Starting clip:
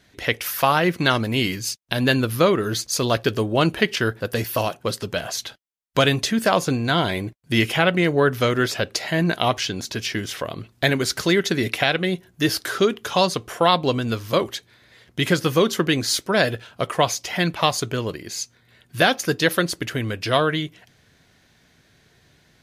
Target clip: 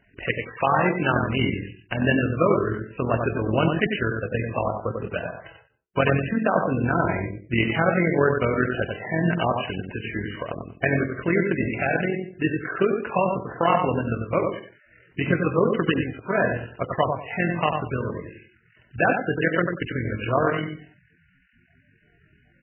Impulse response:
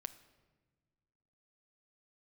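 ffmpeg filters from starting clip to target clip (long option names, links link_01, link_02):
-filter_complex "[0:a]lowshelf=frequency=88:gain=4,bandreject=frequency=72.48:width_type=h:width=4,bandreject=frequency=144.96:width_type=h:width=4,bandreject=frequency=217.44:width_type=h:width=4,bandreject=frequency=289.92:width_type=h:width=4,bandreject=frequency=362.4:width_type=h:width=4,bandreject=frequency=434.88:width_type=h:width=4,bandreject=frequency=507.36:width_type=h:width=4,tremolo=f=43:d=0.621,asplit=2[link_01][link_02];[link_02]adelay=94,lowpass=frequency=2700:poles=1,volume=-4.5dB,asplit=2[link_03][link_04];[link_04]adelay=94,lowpass=frequency=2700:poles=1,volume=0.25,asplit=2[link_05][link_06];[link_06]adelay=94,lowpass=frequency=2700:poles=1,volume=0.25[link_07];[link_01][link_03][link_05][link_07]amix=inputs=4:normalize=0,aresample=8000,aresample=44100" -ar 12000 -c:a libmp3lame -b:a 8k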